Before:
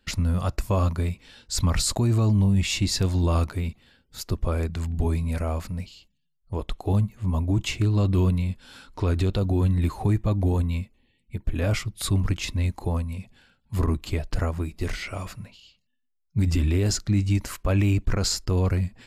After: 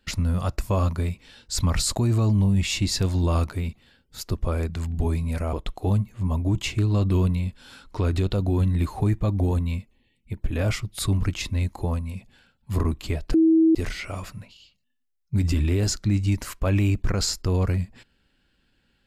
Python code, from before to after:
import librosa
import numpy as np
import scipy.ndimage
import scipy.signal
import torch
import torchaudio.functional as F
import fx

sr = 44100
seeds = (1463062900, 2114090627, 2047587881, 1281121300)

y = fx.edit(x, sr, fx.cut(start_s=5.53, length_s=1.03),
    fx.bleep(start_s=14.37, length_s=0.41, hz=323.0, db=-13.5), tone=tone)